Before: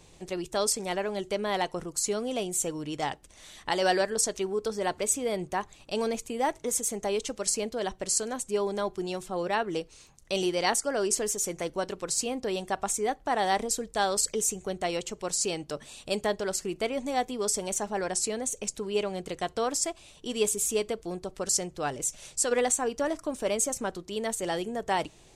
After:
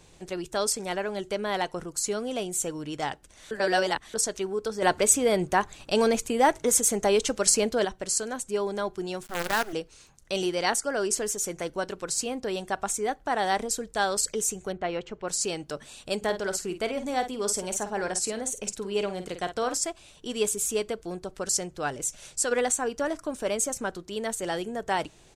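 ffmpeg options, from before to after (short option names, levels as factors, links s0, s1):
-filter_complex "[0:a]asettb=1/sr,asplit=3[s0][s1][s2];[s0]atrim=end=4.824[s3];[s1]atrim=start=4.82:end=7.85,asetpts=PTS-STARTPTS,afade=t=in:d=0.004:c=qsin,afade=t=out:st=3.026:d=0.004:c=qsin,acontrast=72[s4];[s2]atrim=start=7.846[s5];[s3][s4]acrossfade=d=0.004:c1=hsin:c2=qsin[s6];[s6][s5]acrossfade=d=0.004:c1=qsin:c2=hsin,asettb=1/sr,asplit=3[s7][s8][s9];[s7]atrim=end=9.234[s10];[s8]atrim=start=9.23:end=9.73,asetpts=PTS-STARTPTS,afade=t=in:d=0.004:c=qsin,afade=t=out:st=0.496:d=0.004:c=qsin,acrusher=bits=5:dc=4:mix=0:aa=0.000001[s11];[s9]atrim=start=9.726[s12];[s10][s11]acrossfade=d=0.004:c1=hsin:c2=qsin[s13];[s13][s12]acrossfade=d=0.004:c1=qsin:c2=hsin,asettb=1/sr,asplit=3[s14][s15][s16];[s14]atrim=end=14.724[s17];[s15]atrim=start=14.72:end=15.28,asetpts=PTS-STARTPTS,afade=t=in:d=0.004:c=qsin,afade=t=out:st=0.556:d=0.004:c=qsin,lowpass=2500[s18];[s16]atrim=start=15.276[s19];[s17][s18]acrossfade=d=0.004:c1=hsin:c2=qsin[s20];[s20][s19]acrossfade=d=0.004:c1=qsin:c2=hsin,asplit=3[s21][s22][s23];[s21]afade=t=out:st=16.21:d=0.02[s24];[s22]asplit=2[s25][s26];[s26]adelay=50,volume=0.316[s27];[s25][s27]amix=inputs=2:normalize=0,afade=t=in:st=16.21:d=0.02,afade=t=out:st=19.76:d=0.02[s28];[s23]afade=t=in:st=19.76:d=0.02[s29];[s24][s28][s29]amix=inputs=3:normalize=0,asplit=3[s30][s31][s32];[s30]atrim=end=3.512[s33];[s31]atrim=start=3.508:end=4.142,asetpts=PTS-STARTPTS,areverse[s34];[s32]atrim=start=4.138[s35];[s33][s34]acrossfade=d=0.004:c1=hsin:c2=hsin[s36];[s36][s35]acrossfade=d=0.004:c1=hsin:c2=hsin,equalizer=f=1500:w=4.7:g=5.5"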